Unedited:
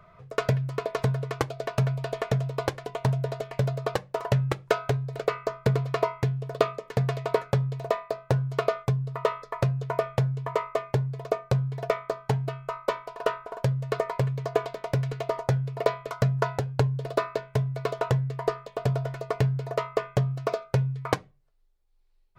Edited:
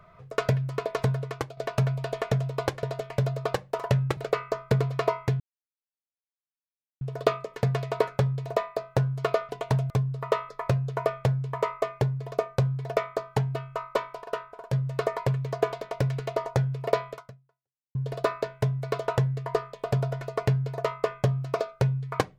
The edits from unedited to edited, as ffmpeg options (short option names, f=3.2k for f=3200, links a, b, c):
-filter_complex "[0:a]asplit=10[a][b][c][d][e][f][g][h][i][j];[a]atrim=end=1.57,asetpts=PTS-STARTPTS,afade=t=out:st=1.13:d=0.44:silence=0.354813[k];[b]atrim=start=1.57:end=2.832,asetpts=PTS-STARTPTS,afade=t=in:d=0.004:c=hsin:silence=0.354813[l];[c]atrim=start=3.238:end=4.582[m];[d]atrim=start=5.118:end=6.35,asetpts=PTS-STARTPTS,afade=t=out:st=1.228:d=0.004:c=hsin,apad=pad_dur=1.61[n];[e]atrim=start=6.35:end=8.832,asetpts=PTS-STARTPTS,afade=t=in:d=0.004:c=hsin[o];[f]atrim=start=2.828:end=3.242[p];[g]atrim=start=8.828:end=13.172[q];[h]atrim=start=13.168:end=13.662,asetpts=PTS-STARTPTS,volume=-5.5dB[r];[i]atrim=start=13.658:end=16.88,asetpts=PTS-STARTPTS,afade=t=out:st=2.382:d=0.84:c=exp[s];[j]atrim=start=16.88,asetpts=PTS-STARTPTS,afade=t=in:d=0.004:c=hsin[t];[k][l]concat=n=2:v=0:a=1[u];[u][m]acrossfade=d=0.004:c1=hsin:c2=hsin[v];[n][o]concat=n=2:v=0:a=1[w];[v][w]acrossfade=d=0.004:c1=hsin:c2=hsin[x];[x][p]acrossfade=d=0.004:c1=hsin:c2=hsin[y];[y][q]acrossfade=d=0.004:c1=hsin:c2=hsin[z];[z][r]acrossfade=d=0.004:c1=hsin:c2=hsin[aa];[s][t]concat=n=2:v=0:a=1[ab];[aa][ab]acrossfade=d=0.004:c1=hsin:c2=hsin"